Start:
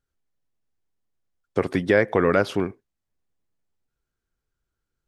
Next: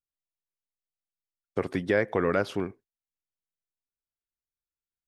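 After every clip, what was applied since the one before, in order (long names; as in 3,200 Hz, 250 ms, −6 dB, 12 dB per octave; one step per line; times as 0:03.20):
noise gate −45 dBFS, range −16 dB
level −6 dB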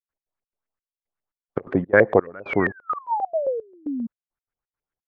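sound drawn into the spectrogram fall, 0:02.42–0:04.07, 220–2,600 Hz −35 dBFS
auto-filter low-pass saw up 7.5 Hz 500–2,000 Hz
gate pattern ".x.xx.xxx...xxx." 171 BPM −24 dB
level +7.5 dB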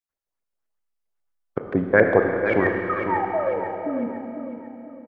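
on a send: repeating echo 500 ms, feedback 39%, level −8.5 dB
on the sum: four-comb reverb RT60 3.1 s, combs from 26 ms, DRR 3.5 dB
level −1 dB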